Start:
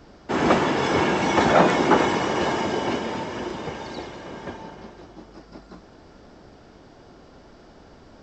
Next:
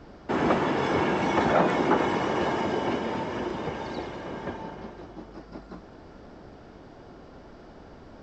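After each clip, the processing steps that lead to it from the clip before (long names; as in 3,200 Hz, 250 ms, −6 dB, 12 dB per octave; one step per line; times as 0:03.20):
downward compressor 1.5 to 1, threshold −31 dBFS, peak gain reduction 7.5 dB
high-shelf EQ 4,200 Hz −10.5 dB
level +1.5 dB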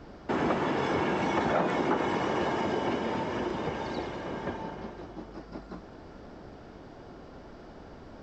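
downward compressor 2 to 1, threshold −27 dBFS, peak gain reduction 6 dB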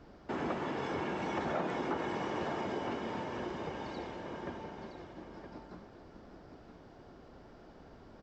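single-tap delay 968 ms −9 dB
level −8 dB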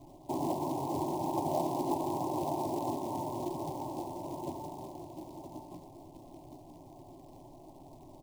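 linear-phase brick-wall low-pass 1,100 Hz
floating-point word with a short mantissa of 2 bits
phaser with its sweep stopped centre 310 Hz, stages 8
level +5.5 dB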